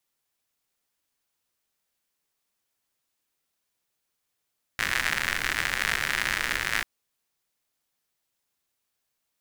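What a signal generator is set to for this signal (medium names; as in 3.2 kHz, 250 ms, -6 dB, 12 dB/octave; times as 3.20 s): rain from filtered ticks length 2.04 s, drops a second 110, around 1.8 kHz, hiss -10.5 dB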